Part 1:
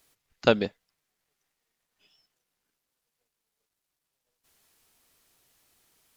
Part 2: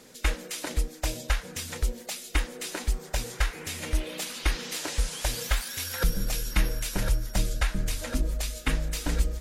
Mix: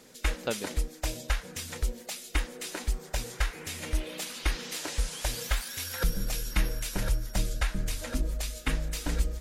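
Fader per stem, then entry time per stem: -11.5 dB, -2.5 dB; 0.00 s, 0.00 s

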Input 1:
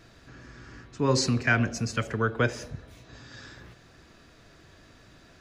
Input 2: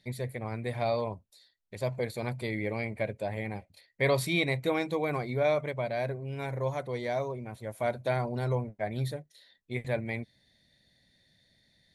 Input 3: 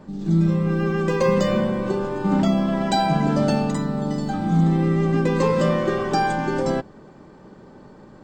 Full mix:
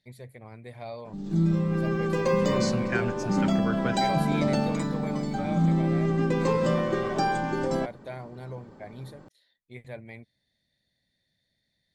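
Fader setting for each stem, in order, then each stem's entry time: -7.0 dB, -9.5 dB, -5.0 dB; 1.45 s, 0.00 s, 1.05 s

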